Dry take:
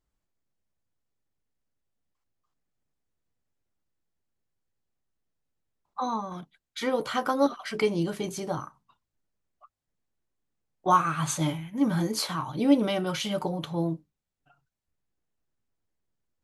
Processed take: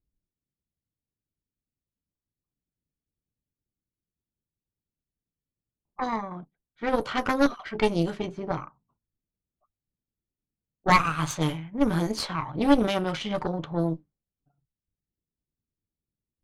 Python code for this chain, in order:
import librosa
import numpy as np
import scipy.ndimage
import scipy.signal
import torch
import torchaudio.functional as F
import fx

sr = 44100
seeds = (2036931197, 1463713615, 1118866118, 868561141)

y = fx.env_lowpass(x, sr, base_hz=320.0, full_db=-22.5)
y = fx.cheby_harmonics(y, sr, harmonics=(4,), levels_db=(-8,), full_scale_db=-8.5)